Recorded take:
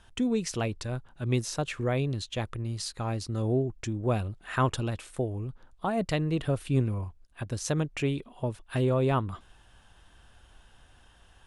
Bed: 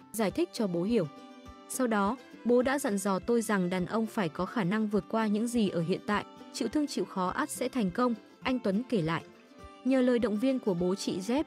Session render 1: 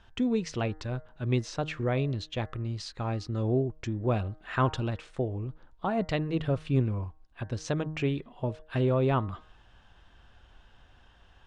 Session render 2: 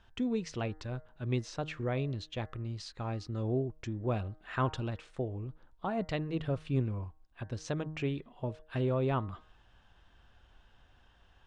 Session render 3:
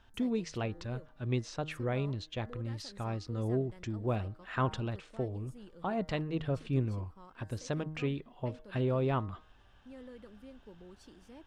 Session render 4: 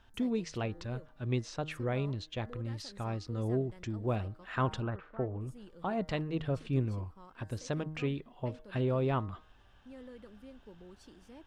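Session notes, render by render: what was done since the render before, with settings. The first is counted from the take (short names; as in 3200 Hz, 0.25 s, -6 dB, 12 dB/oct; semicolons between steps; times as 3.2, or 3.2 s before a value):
Bessel low-pass 4300 Hz, order 4; de-hum 155.8 Hz, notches 13
gain -5 dB
add bed -24 dB
4.82–5.41 synth low-pass 1400 Hz, resonance Q 2.5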